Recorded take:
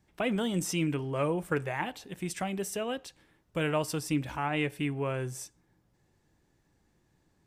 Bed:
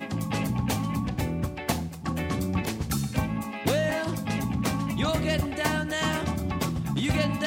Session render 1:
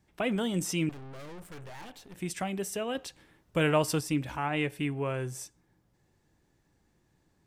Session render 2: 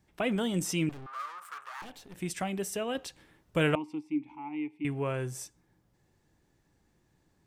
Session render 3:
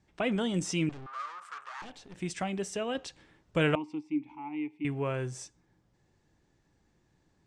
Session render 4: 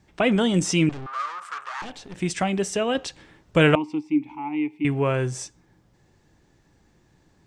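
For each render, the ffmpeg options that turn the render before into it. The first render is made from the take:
-filter_complex "[0:a]asettb=1/sr,asplit=3[s0][s1][s2];[s0]atrim=end=0.894[s3];[s1]atrim=start=0.89:end=2.15,asetpts=PTS-STARTPTS,afade=t=in:d=0.004:c=qsin,afade=t=out:st=1.256:d=0.004:c=qsin,aeval=exprs='(tanh(158*val(0)+0.7)-tanh(0.7))/158':c=same[s4];[s2]atrim=start=2.146[s5];[s3][s4]acrossfade=d=0.004:c1=hsin:c2=qsin[s6];[s6][s5]acrossfade=d=0.004:c1=qsin:c2=hsin,asplit=3[s7][s8][s9];[s7]atrim=end=2.952[s10];[s8]atrim=start=2.948:end=4.012,asetpts=PTS-STARTPTS,volume=1.58[s11];[s9]atrim=start=4.008[s12];[s10][s11]acrossfade=d=0.004:c1=hsin:c2=hsin[s13];[s13][s12]acrossfade=d=0.004:c1=hsin:c2=hsin"
-filter_complex "[0:a]asettb=1/sr,asplit=3[s0][s1][s2];[s0]atrim=end=1.064[s3];[s1]atrim=start=1.06:end=1.82,asetpts=PTS-STARTPTS,afade=t=in:d=0.004:c=qsin,afade=t=out:st=0.756:d=0.004:c=qsin,highpass=f=1200:t=q:w=9[s4];[s2]atrim=start=1.816[s5];[s3][s4]acrossfade=d=0.004:c1=hsin:c2=qsin[s6];[s6][s5]acrossfade=d=0.004:c1=qsin:c2=hsin,asettb=1/sr,asplit=3[s7][s8][s9];[s7]atrim=end=3.754[s10];[s8]atrim=start=3.75:end=4.85,asetpts=PTS-STARTPTS,afade=t=in:d=0.004:c=qsin,afade=t=out:st=1.096:d=0.004:c=qsin,asplit=3[s11][s12][s13];[s11]bandpass=f=300:t=q:w=8,volume=1[s14];[s12]bandpass=f=870:t=q:w=8,volume=0.501[s15];[s13]bandpass=f=2240:t=q:w=8,volume=0.355[s16];[s14][s15][s16]amix=inputs=3:normalize=0[s17];[s9]atrim=start=4.846[s18];[s10][s17]acrossfade=d=0.004:c1=hsin:c2=qsin[s19];[s19][s18]acrossfade=d=0.004:c1=qsin:c2=hsin"
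-af "lowpass=f=7800:w=0.5412,lowpass=f=7800:w=1.3066"
-af "volume=2.99"

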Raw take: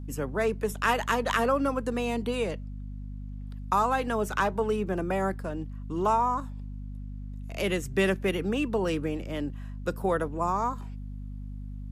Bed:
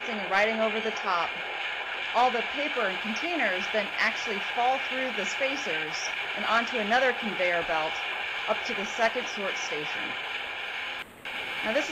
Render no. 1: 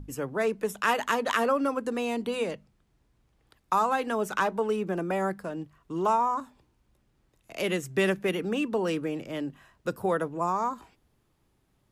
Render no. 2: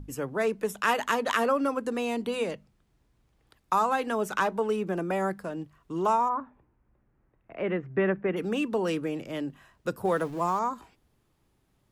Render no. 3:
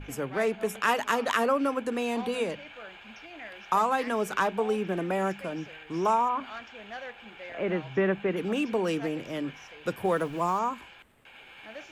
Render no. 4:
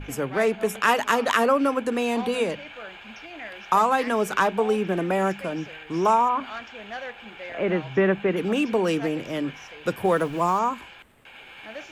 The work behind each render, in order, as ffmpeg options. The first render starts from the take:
-af "bandreject=f=50:t=h:w=6,bandreject=f=100:t=h:w=6,bandreject=f=150:t=h:w=6,bandreject=f=200:t=h:w=6,bandreject=f=250:t=h:w=6"
-filter_complex "[0:a]asplit=3[s0][s1][s2];[s0]afade=t=out:st=6.28:d=0.02[s3];[s1]lowpass=f=2000:w=0.5412,lowpass=f=2000:w=1.3066,afade=t=in:st=6.28:d=0.02,afade=t=out:st=8.36:d=0.02[s4];[s2]afade=t=in:st=8.36:d=0.02[s5];[s3][s4][s5]amix=inputs=3:normalize=0,asettb=1/sr,asplit=3[s6][s7][s8];[s6]atrim=end=10.054[s9];[s7]atrim=start=10.05:end=10.59,asetpts=PTS-STARTPTS,afade=t=in:d=0.004:c=qsin,afade=t=out:st=0.536:d=0.004:c=qsin,aeval=exprs='val(0)+0.5*0.0075*sgn(val(0))':c=same[s10];[s8]atrim=start=10.586[s11];[s9][s10]acrossfade=d=0.004:c1=hsin:c2=qsin[s12];[s12][s11]acrossfade=d=0.004:c1=qsin:c2=hsin"
-filter_complex "[1:a]volume=0.15[s0];[0:a][s0]amix=inputs=2:normalize=0"
-af "volume=1.78"

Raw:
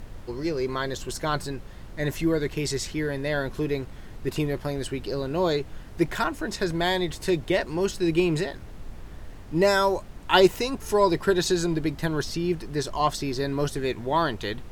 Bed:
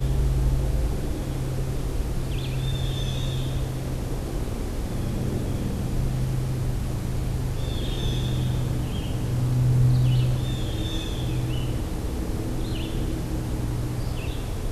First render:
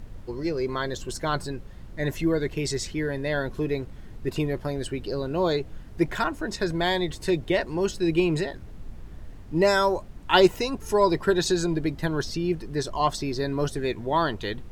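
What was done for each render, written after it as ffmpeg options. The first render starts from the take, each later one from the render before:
-af "afftdn=nr=6:nf=-42"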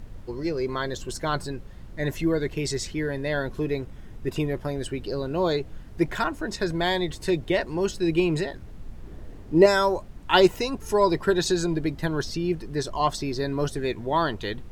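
-filter_complex "[0:a]asettb=1/sr,asplit=3[s0][s1][s2];[s0]atrim=end=3.814[s3];[s1]atrim=start=3.81:end=4.88,asetpts=PTS-STARTPTS,afade=t=in:d=0.004:c=qsin,afade=t=out:st=1.066:d=0.004:c=qsin,bandreject=f=4300:w=12[s4];[s2]atrim=start=4.876[s5];[s3][s4]acrossfade=d=0.004:c1=hsin:c2=qsin[s6];[s6][s5]acrossfade=d=0.004:c1=qsin:c2=hsin,asettb=1/sr,asplit=3[s7][s8][s9];[s7]atrim=end=9.034[s10];[s8]atrim=start=9.03:end=9.66,asetpts=PTS-STARTPTS,afade=t=in:d=0.004:c=qsin,afade=t=out:st=0.626:d=0.004:c=qsin,equalizer=f=400:w=0.97:g=7.5[s11];[s9]atrim=start=9.656[s12];[s10][s11]acrossfade=d=0.004:c1=hsin:c2=qsin[s13];[s13][s12]acrossfade=d=0.004:c1=qsin:c2=hsin"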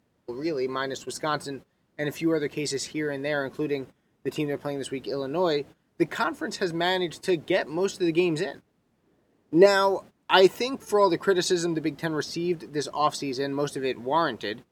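-af "highpass=200,agate=range=0.141:threshold=0.01:ratio=16:detection=peak"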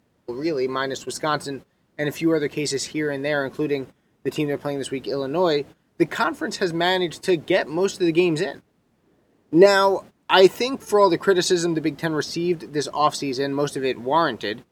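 -af "volume=1.68,alimiter=limit=0.794:level=0:latency=1"

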